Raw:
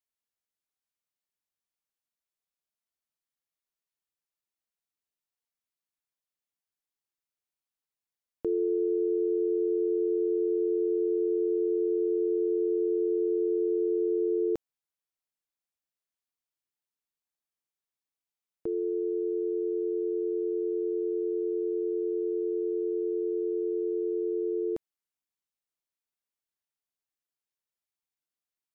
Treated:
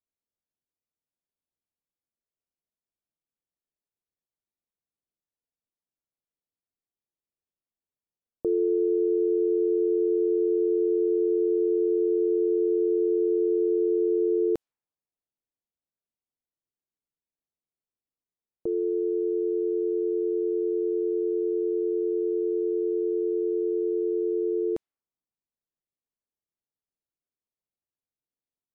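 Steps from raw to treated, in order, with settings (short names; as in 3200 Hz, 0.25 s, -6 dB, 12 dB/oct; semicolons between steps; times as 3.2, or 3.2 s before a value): low-pass opened by the level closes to 560 Hz, open at -26 dBFS; gain +3.5 dB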